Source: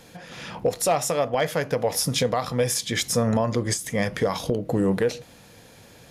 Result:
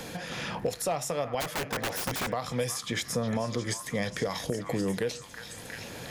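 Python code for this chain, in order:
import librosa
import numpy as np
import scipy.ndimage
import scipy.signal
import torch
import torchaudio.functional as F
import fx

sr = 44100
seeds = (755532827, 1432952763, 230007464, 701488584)

y = fx.echo_stepped(x, sr, ms=358, hz=1400.0, octaves=0.7, feedback_pct=70, wet_db=-8)
y = fx.overflow_wrap(y, sr, gain_db=20.0, at=(1.4, 2.31), fade=0.02)
y = fx.band_squash(y, sr, depth_pct=70)
y = y * librosa.db_to_amplitude(-7.5)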